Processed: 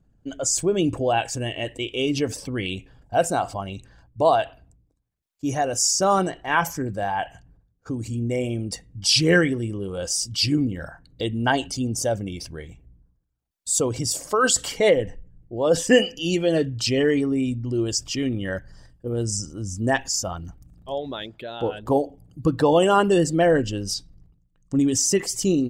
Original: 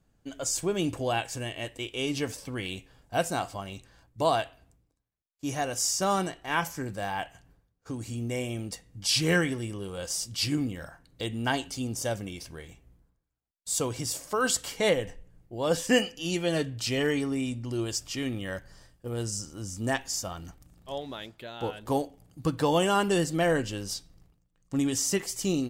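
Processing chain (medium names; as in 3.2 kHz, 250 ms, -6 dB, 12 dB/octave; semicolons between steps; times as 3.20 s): resonances exaggerated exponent 1.5; trim +7 dB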